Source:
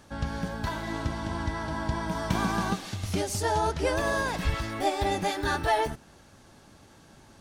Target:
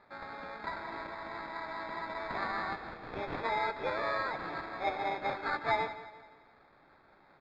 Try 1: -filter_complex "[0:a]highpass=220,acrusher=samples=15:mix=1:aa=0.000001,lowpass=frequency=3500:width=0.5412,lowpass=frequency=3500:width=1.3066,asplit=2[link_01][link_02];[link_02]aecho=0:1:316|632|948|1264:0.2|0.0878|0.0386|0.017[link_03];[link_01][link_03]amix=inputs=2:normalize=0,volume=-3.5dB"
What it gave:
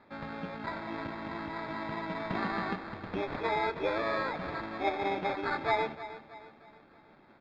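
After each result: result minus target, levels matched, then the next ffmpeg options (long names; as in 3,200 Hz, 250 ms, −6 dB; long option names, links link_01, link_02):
echo 144 ms late; 250 Hz band +6.5 dB
-filter_complex "[0:a]highpass=220,acrusher=samples=15:mix=1:aa=0.000001,lowpass=frequency=3500:width=0.5412,lowpass=frequency=3500:width=1.3066,asplit=2[link_01][link_02];[link_02]aecho=0:1:172|344|516|688:0.2|0.0878|0.0386|0.017[link_03];[link_01][link_03]amix=inputs=2:normalize=0,volume=-3.5dB"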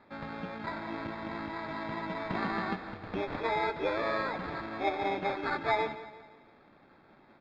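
250 Hz band +6.5 dB
-filter_complex "[0:a]highpass=610,acrusher=samples=15:mix=1:aa=0.000001,lowpass=frequency=3500:width=0.5412,lowpass=frequency=3500:width=1.3066,asplit=2[link_01][link_02];[link_02]aecho=0:1:172|344|516|688:0.2|0.0878|0.0386|0.017[link_03];[link_01][link_03]amix=inputs=2:normalize=0,volume=-3.5dB"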